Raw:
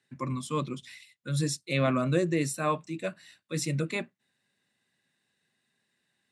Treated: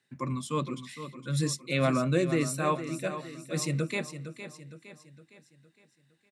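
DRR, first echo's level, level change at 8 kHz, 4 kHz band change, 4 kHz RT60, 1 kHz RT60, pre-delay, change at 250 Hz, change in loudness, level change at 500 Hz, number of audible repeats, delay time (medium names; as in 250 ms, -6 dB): no reverb, -11.0 dB, +0.5 dB, +0.5 dB, no reverb, no reverb, no reverb, +0.5 dB, 0.0 dB, +0.5 dB, 4, 461 ms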